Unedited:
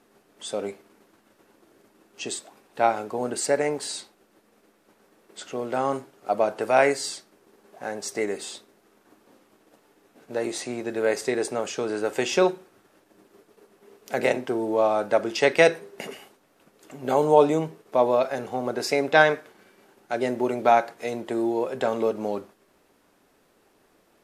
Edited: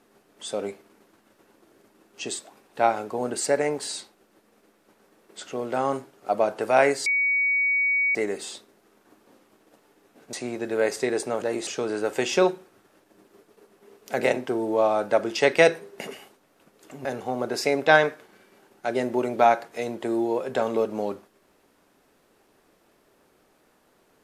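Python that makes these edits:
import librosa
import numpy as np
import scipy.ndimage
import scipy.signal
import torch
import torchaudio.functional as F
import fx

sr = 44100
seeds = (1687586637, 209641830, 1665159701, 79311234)

y = fx.edit(x, sr, fx.bleep(start_s=7.06, length_s=1.09, hz=2250.0, db=-19.5),
    fx.move(start_s=10.33, length_s=0.25, to_s=11.67),
    fx.cut(start_s=17.05, length_s=1.26), tone=tone)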